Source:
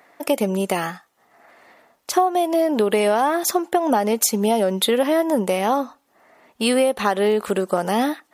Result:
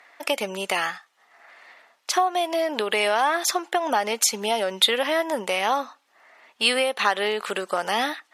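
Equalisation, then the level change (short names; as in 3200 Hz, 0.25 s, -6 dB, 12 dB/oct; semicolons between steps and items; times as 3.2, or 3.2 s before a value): band-pass 2800 Hz, Q 0.67; +5.0 dB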